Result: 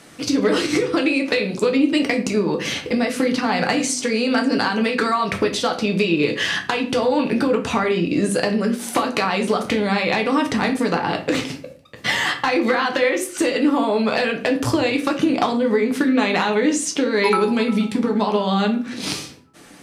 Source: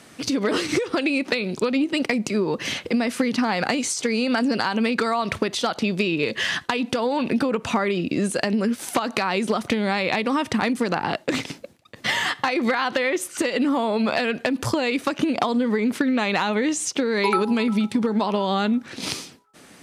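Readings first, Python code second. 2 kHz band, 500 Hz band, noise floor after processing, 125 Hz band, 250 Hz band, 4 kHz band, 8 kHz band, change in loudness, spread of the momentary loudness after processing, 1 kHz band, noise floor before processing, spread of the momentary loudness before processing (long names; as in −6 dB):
+3.0 dB, +4.5 dB, −41 dBFS, +3.5 dB, +3.0 dB, +2.5 dB, +2.5 dB, +3.0 dB, 4 LU, +3.0 dB, −49 dBFS, 3 LU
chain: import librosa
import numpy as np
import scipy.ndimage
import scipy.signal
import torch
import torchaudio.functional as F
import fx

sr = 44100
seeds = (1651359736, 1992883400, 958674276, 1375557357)

y = fx.room_shoebox(x, sr, seeds[0], volume_m3=34.0, walls='mixed', distance_m=0.41)
y = y * 10.0 ** (1.0 / 20.0)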